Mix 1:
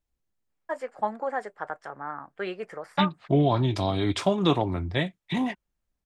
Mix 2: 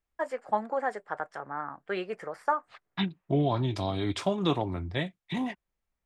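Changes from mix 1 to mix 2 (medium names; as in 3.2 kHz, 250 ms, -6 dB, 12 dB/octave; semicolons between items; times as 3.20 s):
first voice: entry -0.50 s; second voice -4.5 dB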